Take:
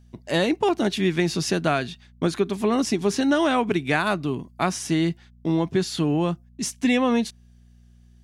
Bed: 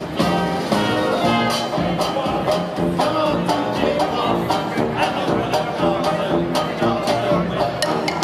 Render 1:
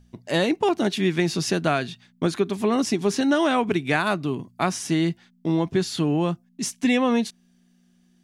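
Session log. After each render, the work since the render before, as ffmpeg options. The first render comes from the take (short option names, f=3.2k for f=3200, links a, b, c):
-af "bandreject=f=60:t=h:w=4,bandreject=f=120:t=h:w=4"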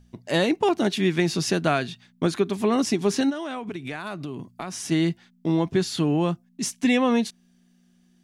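-filter_complex "[0:a]asplit=3[a][b][c];[a]afade=t=out:st=3.29:d=0.02[d];[b]acompressor=threshold=-29dB:ratio=6:attack=3.2:release=140:knee=1:detection=peak,afade=t=in:st=3.29:d=0.02,afade=t=out:st=4.9:d=0.02[e];[c]afade=t=in:st=4.9:d=0.02[f];[d][e][f]amix=inputs=3:normalize=0"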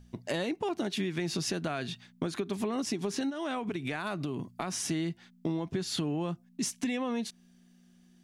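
-af "alimiter=limit=-16.5dB:level=0:latency=1:release=134,acompressor=threshold=-29dB:ratio=6"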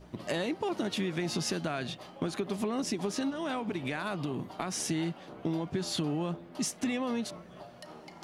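-filter_complex "[1:a]volume=-28.5dB[a];[0:a][a]amix=inputs=2:normalize=0"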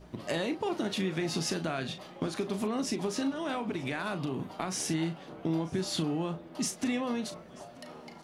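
-filter_complex "[0:a]asplit=2[a][b];[b]adelay=37,volume=-10dB[c];[a][c]amix=inputs=2:normalize=0,aecho=1:1:934:0.0668"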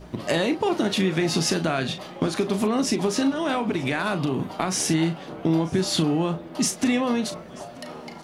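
-af "volume=9dB"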